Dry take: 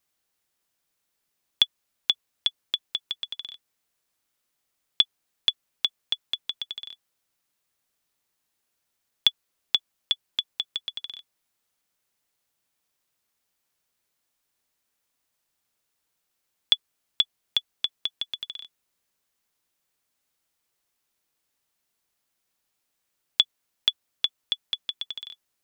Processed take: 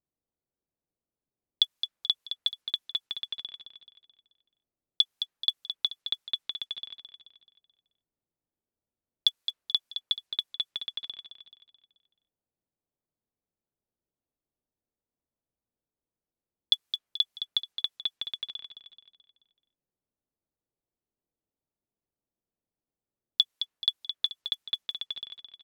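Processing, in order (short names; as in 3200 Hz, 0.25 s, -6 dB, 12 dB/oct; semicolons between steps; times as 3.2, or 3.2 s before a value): block floating point 7-bit; low-pass opened by the level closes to 490 Hz, open at -29 dBFS; on a send: feedback echo 0.216 s, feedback 43%, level -9 dB; on the sum: gain -2.5 dB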